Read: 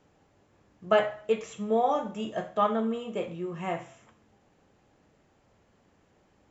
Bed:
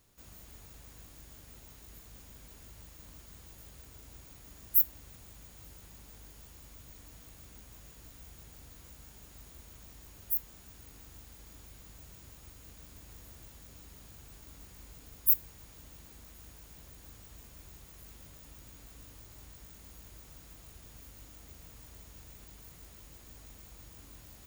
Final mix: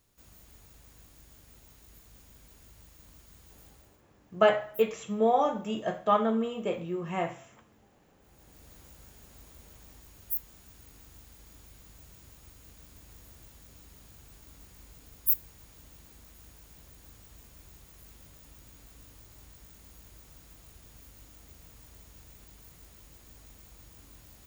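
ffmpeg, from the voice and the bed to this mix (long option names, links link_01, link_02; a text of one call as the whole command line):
ffmpeg -i stem1.wav -i stem2.wav -filter_complex "[0:a]adelay=3500,volume=1dB[link_01];[1:a]volume=18dB,afade=type=out:start_time=3.66:duration=0.38:silence=0.112202,afade=type=in:start_time=8.18:duration=0.52:silence=0.0891251[link_02];[link_01][link_02]amix=inputs=2:normalize=0" out.wav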